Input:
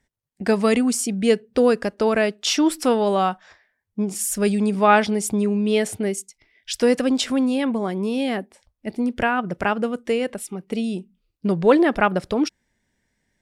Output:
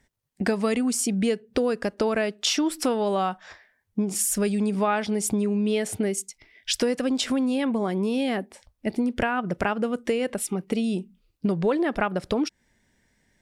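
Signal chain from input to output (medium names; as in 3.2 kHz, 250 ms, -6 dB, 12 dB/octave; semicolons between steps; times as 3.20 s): compression 5:1, threshold -27 dBFS, peak gain reduction 15.5 dB; trim +5 dB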